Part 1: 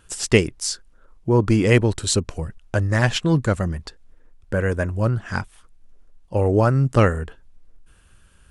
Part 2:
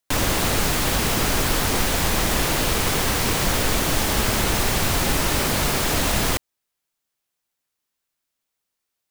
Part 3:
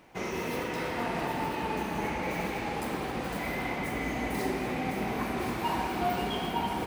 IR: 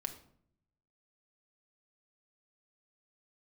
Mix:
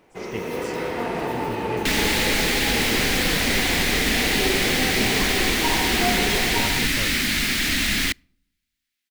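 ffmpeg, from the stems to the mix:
-filter_complex "[0:a]afwtdn=0.0282,volume=-18dB[link_01];[1:a]equalizer=frequency=125:width_type=o:width=1:gain=-7,equalizer=frequency=250:width_type=o:width=1:gain=10,equalizer=frequency=500:width_type=o:width=1:gain=-12,equalizer=frequency=1000:width_type=o:width=1:gain=-10,equalizer=frequency=2000:width_type=o:width=1:gain=12,equalizer=frequency=4000:width_type=o:width=1:gain=6,adelay=1750,volume=-4.5dB,asplit=2[link_02][link_03];[link_03]volume=-23.5dB[link_04];[2:a]equalizer=frequency=430:width=2.4:gain=7,dynaudnorm=framelen=140:gausssize=7:maxgain=5.5dB,volume=-2dB[link_05];[3:a]atrim=start_sample=2205[link_06];[link_04][link_06]afir=irnorm=-1:irlink=0[link_07];[link_01][link_02][link_05][link_07]amix=inputs=4:normalize=0"

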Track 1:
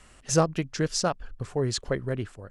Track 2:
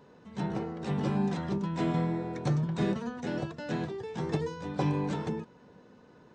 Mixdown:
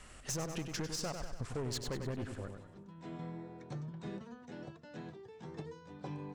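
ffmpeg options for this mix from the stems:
ffmpeg -i stem1.wav -i stem2.wav -filter_complex "[0:a]alimiter=limit=-19.5dB:level=0:latency=1:release=102,aeval=exprs='(tanh(28.2*val(0)+0.35)-tanh(0.35))/28.2':channel_layout=same,volume=0.5dB,asplit=3[link_01][link_02][link_03];[link_02]volume=-8dB[link_04];[1:a]adelay=1250,volume=-14dB[link_05];[link_03]apad=whole_len=335111[link_06];[link_05][link_06]sidechaincompress=threshold=-50dB:ratio=8:attack=6.1:release=720[link_07];[link_04]aecho=0:1:97|194|291|388|485|582|679:1|0.51|0.26|0.133|0.0677|0.0345|0.0176[link_08];[link_01][link_07][link_08]amix=inputs=3:normalize=0,acompressor=threshold=-37dB:ratio=2.5" out.wav

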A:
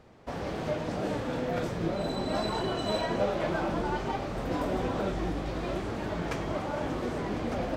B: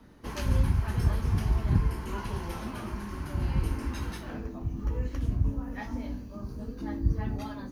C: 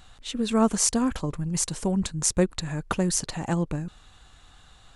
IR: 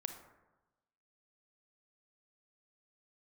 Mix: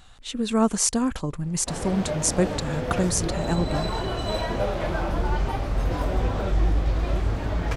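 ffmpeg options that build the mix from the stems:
-filter_complex "[0:a]asubboost=boost=7:cutoff=85,adelay=1400,volume=2.5dB[link_01];[1:a]adelay=1850,volume=-5dB[link_02];[2:a]volume=0.5dB,asplit=2[link_03][link_04];[link_04]apad=whole_len=421912[link_05];[link_02][link_05]sidechaincompress=threshold=-26dB:ratio=8:attack=16:release=1310[link_06];[link_01][link_06][link_03]amix=inputs=3:normalize=0"

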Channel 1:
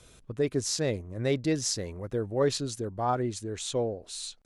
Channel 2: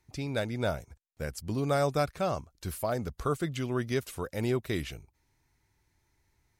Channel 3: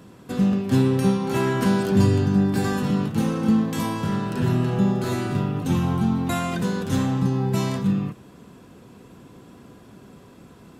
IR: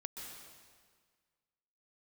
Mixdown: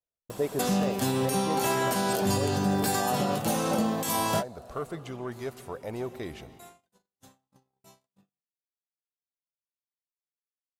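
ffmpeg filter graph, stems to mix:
-filter_complex "[0:a]volume=-9.5dB,asplit=3[link_01][link_02][link_03];[link_02]volume=-3.5dB[link_04];[1:a]asoftclip=type=tanh:threshold=-22dB,adelay=1500,volume=-9.5dB,asplit=2[link_05][link_06];[link_06]volume=-6.5dB[link_07];[2:a]crystalizer=i=7.5:c=0,adelay=300,volume=-3dB[link_08];[link_03]apad=whole_len=489393[link_09];[link_08][link_09]sidechaingate=range=-33dB:threshold=-60dB:ratio=16:detection=peak[link_10];[3:a]atrim=start_sample=2205[link_11];[link_04][link_07]amix=inputs=2:normalize=0[link_12];[link_12][link_11]afir=irnorm=-1:irlink=0[link_13];[link_01][link_05][link_10][link_13]amix=inputs=4:normalize=0,agate=range=-41dB:threshold=-53dB:ratio=16:detection=peak,equalizer=frequency=710:width_type=o:width=1.2:gain=13.5,alimiter=limit=-16.5dB:level=0:latency=1:release=435"

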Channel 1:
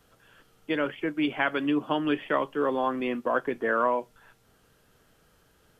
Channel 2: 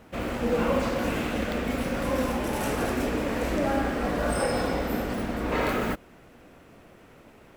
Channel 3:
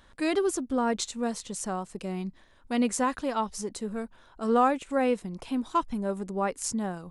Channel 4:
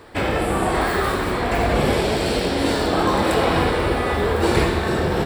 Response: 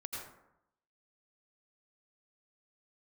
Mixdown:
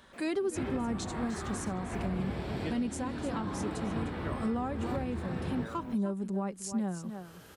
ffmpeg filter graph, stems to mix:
-filter_complex "[0:a]acompressor=mode=upward:threshold=-32dB:ratio=2.5,adelay=1950,volume=-4dB[link_01];[1:a]highpass=frequency=180:width=0.5412,highpass=frequency=180:width=1.3066,volume=-17.5dB,asplit=3[link_02][link_03][link_04];[link_02]atrim=end=0.92,asetpts=PTS-STARTPTS,afade=type=out:start_time=0.916:duration=0.004:curve=hsin[link_05];[link_03]atrim=start=0.92:end=3.82,asetpts=PTS-STARTPTS,volume=0[link_06];[link_04]atrim=start=3.82,asetpts=PTS-STARTPTS,afade=type=in:duration=0.004:curve=hsin[link_07];[link_05][link_06][link_07]concat=n=3:v=0:a=1[link_08];[2:a]aecho=1:1:5.2:0.35,volume=1dB,asplit=3[link_09][link_10][link_11];[link_10]volume=-12.5dB[link_12];[3:a]lowpass=frequency=2200:poles=1,equalizer=frequency=490:width=1.4:gain=-6,adelay=400,volume=-9dB,asplit=2[link_13][link_14];[link_14]volume=-10dB[link_15];[link_11]apad=whole_len=341500[link_16];[link_01][link_16]sidechaincompress=threshold=-34dB:ratio=8:attack=36:release=864[link_17];[link_12][link_15]amix=inputs=2:normalize=0,aecho=0:1:304:1[link_18];[link_17][link_08][link_09][link_13][link_18]amix=inputs=5:normalize=0,acrossover=split=270[link_19][link_20];[link_20]acompressor=threshold=-42dB:ratio=2[link_21];[link_19][link_21]amix=inputs=2:normalize=0,highpass=73,alimiter=limit=-23.5dB:level=0:latency=1:release=424"

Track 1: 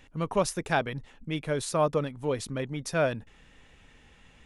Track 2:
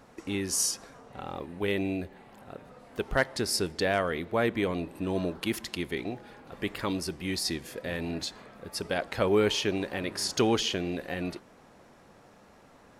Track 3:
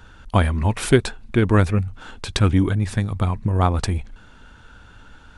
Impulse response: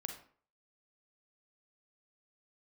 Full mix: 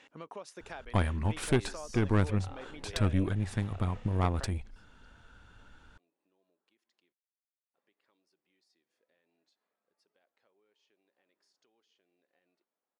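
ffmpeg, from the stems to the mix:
-filter_complex "[0:a]acompressor=threshold=-31dB:ratio=2,volume=0.5dB,asplit=2[link_01][link_02];[1:a]acompressor=threshold=-34dB:ratio=6,adelay=1250,volume=1.5dB,asplit=3[link_03][link_04][link_05];[link_03]atrim=end=7.13,asetpts=PTS-STARTPTS,afade=type=out:start_time=7.126:duration=0.004:curve=hsin[link_06];[link_04]atrim=start=7.13:end=7.74,asetpts=PTS-STARTPTS,volume=0[link_07];[link_05]atrim=start=7.74,asetpts=PTS-STARTPTS,afade=type=in:duration=0.004:curve=hsin[link_08];[link_06][link_07][link_08]concat=n=3:v=0:a=1[link_09];[2:a]aeval=exprs='(tanh(2.82*val(0)+0.6)-tanh(0.6))/2.82':channel_layout=same,adelay=600,volume=-8dB[link_10];[link_02]apad=whole_len=628263[link_11];[link_09][link_11]sidechaingate=range=-38dB:threshold=-54dB:ratio=16:detection=peak[link_12];[link_01][link_12]amix=inputs=2:normalize=0,highpass=340,lowpass=7000,acompressor=threshold=-47dB:ratio=2.5,volume=0dB[link_13];[link_10][link_13]amix=inputs=2:normalize=0"

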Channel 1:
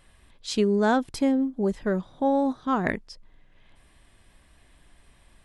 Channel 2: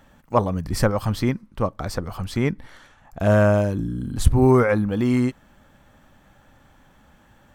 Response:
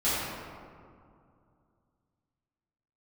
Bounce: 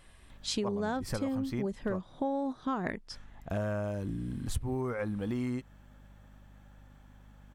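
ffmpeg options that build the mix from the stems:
-filter_complex "[0:a]volume=0dB[link_01];[1:a]aeval=exprs='val(0)+0.00501*(sin(2*PI*50*n/s)+sin(2*PI*2*50*n/s)/2+sin(2*PI*3*50*n/s)/3+sin(2*PI*4*50*n/s)/4+sin(2*PI*5*50*n/s)/5)':channel_layout=same,adelay=300,volume=-8dB,asplit=3[link_02][link_03][link_04];[link_02]atrim=end=2.03,asetpts=PTS-STARTPTS,afade=type=out:start_time=2.026:duration=0.004:curve=hsin[link_05];[link_03]atrim=start=2.03:end=3.1,asetpts=PTS-STARTPTS,volume=0[link_06];[link_04]atrim=start=3.1,asetpts=PTS-STARTPTS,afade=type=in:duration=0.004:curve=hsin[link_07];[link_05][link_06][link_07]concat=n=3:v=0:a=1[link_08];[link_01][link_08]amix=inputs=2:normalize=0,acompressor=threshold=-30dB:ratio=6"

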